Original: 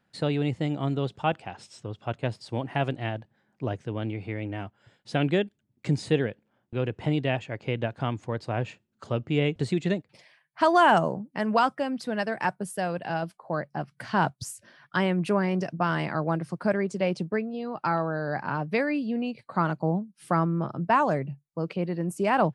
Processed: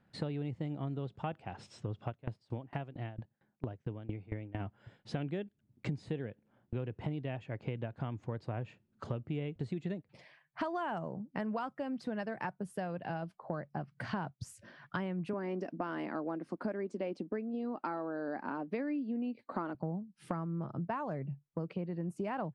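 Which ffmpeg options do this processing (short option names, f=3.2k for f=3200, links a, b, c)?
-filter_complex "[0:a]asplit=3[a][b][c];[a]afade=t=out:st=2.09:d=0.02[d];[b]aeval=exprs='val(0)*pow(10,-25*if(lt(mod(4.4*n/s,1),2*abs(4.4)/1000),1-mod(4.4*n/s,1)/(2*abs(4.4)/1000),(mod(4.4*n/s,1)-2*abs(4.4)/1000)/(1-2*abs(4.4)/1000))/20)':c=same,afade=t=in:st=2.09:d=0.02,afade=t=out:st=4.59:d=0.02[e];[c]afade=t=in:st=4.59:d=0.02[f];[d][e][f]amix=inputs=3:normalize=0,asettb=1/sr,asplit=3[g][h][i];[g]atrim=end=15.334[j];[h]atrim=start=15.33:end=19.75,asetpts=PTS-STARTPTS,afade=t=in:d=0.004:c=qsin,afade=t=out:st=4.416:d=0.004:c=qsin,lowshelf=f=190:t=q:w=3:g=-11[k];[i]atrim=start=19.746[l];[j][k]acrossfade=d=0.004:c1=hsin:c2=qsin[m];[m][l]acrossfade=d=0.004:c1=qsin:c2=hsin,lowpass=f=2.4k:p=1,lowshelf=f=230:g=6,acompressor=threshold=-35dB:ratio=6"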